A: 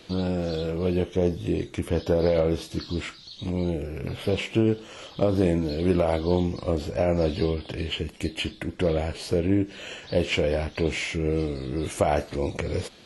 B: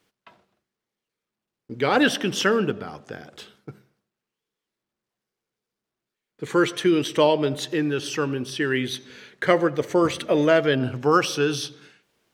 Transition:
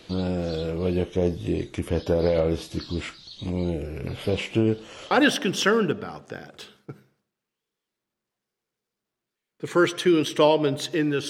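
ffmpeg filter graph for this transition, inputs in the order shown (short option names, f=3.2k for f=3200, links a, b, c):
-filter_complex "[0:a]apad=whole_dur=11.29,atrim=end=11.29,atrim=end=5.112[a];[1:a]atrim=start=1.898:end=8.08[b];[a][b]acrossfade=d=0.004:c1=hsin:c2=hsin"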